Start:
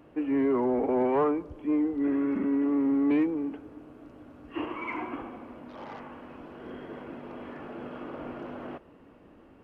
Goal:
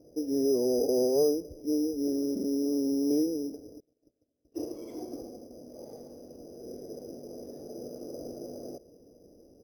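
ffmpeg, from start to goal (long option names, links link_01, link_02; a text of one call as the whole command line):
ffmpeg -i in.wav -filter_complex "[0:a]asettb=1/sr,asplit=3[link_01][link_02][link_03];[link_01]atrim=end=3.804[link_04];[link_02]atrim=start=3.8:end=5.51,asetpts=PTS-STARTPTS,afade=type=in:duration=0.004:curve=qsin,afade=type=out:start_time=1.706:duration=0.004:curve=qsin,agate=range=-31dB:threshold=-44dB:ratio=16:detection=peak[link_05];[link_03]atrim=start=5.506[link_06];[link_04][link_05]acrossfade=duration=0.004:curve1=hsin:curve2=qsin[link_07];[link_07][link_06]acrossfade=duration=0.004:curve1=qsin:curve2=hsin,firequalizer=gain_entry='entry(270,0);entry(480,8);entry(690,-1);entry(980,-24)':delay=0.05:min_phase=1,acrusher=samples=8:mix=1:aa=0.000001,volume=-4dB" out.wav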